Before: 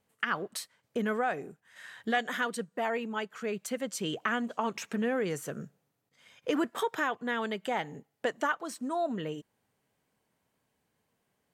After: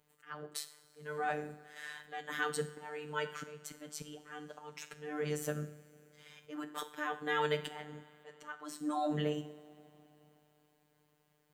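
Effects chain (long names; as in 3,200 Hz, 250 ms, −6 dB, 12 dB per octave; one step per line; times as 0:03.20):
volume swells 631 ms
coupled-rooms reverb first 0.53 s, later 3.6 s, from −18 dB, DRR 8.5 dB
phases set to zero 150 Hz
level +3.5 dB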